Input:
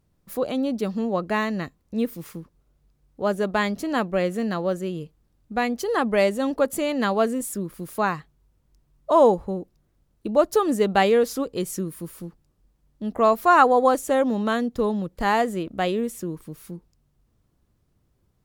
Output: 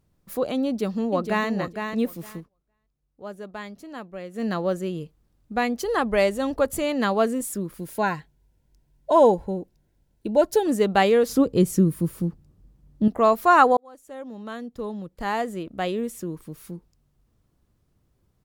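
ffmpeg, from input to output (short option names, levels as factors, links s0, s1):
-filter_complex "[0:a]asplit=2[s0][s1];[s1]afade=t=in:st=0.66:d=0.01,afade=t=out:st=1.48:d=0.01,aecho=0:1:460|920|1380:0.473151|0.0709727|0.0106459[s2];[s0][s2]amix=inputs=2:normalize=0,asettb=1/sr,asplit=3[s3][s4][s5];[s3]atrim=end=5.844[s6];[s4]atrim=start=5.84:end=6.84,asetpts=PTS-STARTPTS,afade=t=in:d=0.004:c=qsin,afade=t=out:st=0.996:d=0.004:c=qsin,lowshelf=f=140:t=q:w=1.5:g=10[s7];[s5]atrim=start=6.836[s8];[s6][s7]acrossfade=d=0.004:c1=hsin:c2=qsin[s9];[s9][s8]acrossfade=d=0.004:c1=qsin:c2=hsin,asettb=1/sr,asplit=3[s10][s11][s12];[s10]atrim=end=7.784[s13];[s11]atrim=start=7.78:end=10.67,asetpts=PTS-STARTPTS,afade=t=in:d=0.004:c=qsin,afade=t=out:st=2.886:d=0.004:c=qsin,asuperstop=centerf=1200:order=12:qfactor=5[s14];[s12]atrim=start=10.666[s15];[s13][s14]acrossfade=d=0.004:c1=hsin:c2=qsin[s16];[s16][s15]acrossfade=d=0.004:c1=qsin:c2=hsin,asettb=1/sr,asplit=3[s17][s18][s19];[s17]atrim=end=11.294[s20];[s18]atrim=start=11.29:end=13.08,asetpts=PTS-STARTPTS,afade=t=in:d=0.004:c=qsin,afade=t=out:st=1.786:d=0.004:c=qsin,equalizer=f=110:w=0.3:g=13[s21];[s19]atrim=start=13.076[s22];[s20][s21]acrossfade=d=0.004:c1=hsin:c2=qsin[s23];[s23][s22]acrossfade=d=0.004:c1=qsin:c2=hsin,asplit=4[s24][s25][s26][s27];[s24]atrim=end=2.49,asetpts=PTS-STARTPTS,afade=t=out:st=2.37:d=0.12:silence=0.211349[s28];[s25]atrim=start=2.49:end=4.33,asetpts=PTS-STARTPTS,volume=0.211[s29];[s26]atrim=start=4.33:end=13.77,asetpts=PTS-STARTPTS,afade=t=in:d=0.12:silence=0.211349,afade=t=out:st=9.436:d=0.004:c=hsin[s30];[s27]atrim=start=13.77,asetpts=PTS-STARTPTS,afade=t=in:d=2.88[s31];[s28][s29][s30][s31]concat=n=4:v=0:a=1"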